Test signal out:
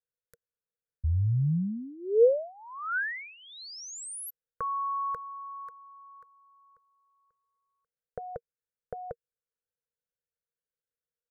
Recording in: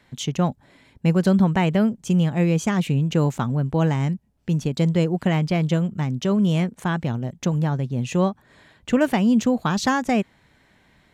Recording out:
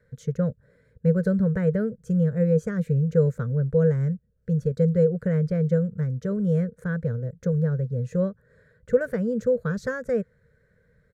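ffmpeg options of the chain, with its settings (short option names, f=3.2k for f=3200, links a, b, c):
-af "firequalizer=gain_entry='entry(160,0);entry(320,-22);entry(470,10);entry(770,-27);entry(1500,-2);entry(2800,-29);entry(4100,-19);entry(9300,-14)':delay=0.05:min_phase=1,volume=-1dB"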